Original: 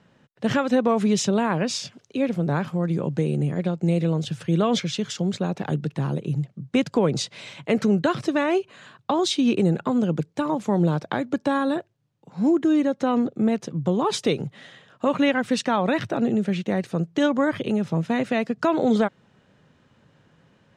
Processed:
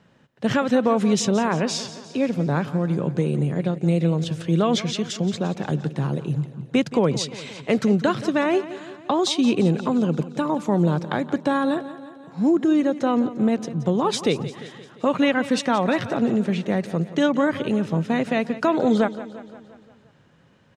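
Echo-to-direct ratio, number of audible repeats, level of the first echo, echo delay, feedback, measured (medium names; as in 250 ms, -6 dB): -13.0 dB, 5, -15.0 dB, 174 ms, 58%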